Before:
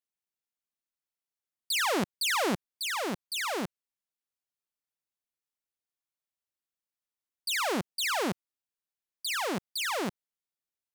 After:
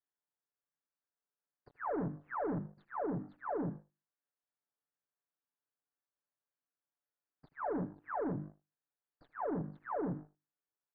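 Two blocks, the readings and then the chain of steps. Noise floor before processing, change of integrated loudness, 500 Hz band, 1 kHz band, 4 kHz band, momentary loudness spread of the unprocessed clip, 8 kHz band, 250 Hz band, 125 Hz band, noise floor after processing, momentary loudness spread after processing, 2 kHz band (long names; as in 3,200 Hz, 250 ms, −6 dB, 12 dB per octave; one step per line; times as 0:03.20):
below −85 dBFS, −9.0 dB, −4.5 dB, −7.0 dB, below −40 dB, 9 LU, below −40 dB, −3.5 dB, +1.0 dB, below −85 dBFS, 8 LU, −18.5 dB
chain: every bin's largest magnitude spread in time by 60 ms
high-pass filter 130 Hz 12 dB per octave
mains-hum notches 50/100/150/200/250/300/350 Hz
treble cut that deepens with the level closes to 300 Hz, closed at −26 dBFS
comb filter 6.9 ms, depth 81%
leveller curve on the samples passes 3
downward compressor, threshold −36 dBFS, peak gain reduction 11 dB
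Chebyshev low-pass filter 1,700 Hz, order 4
on a send: single-tap delay 78 ms −17.5 dB
on the sum: level +1 dB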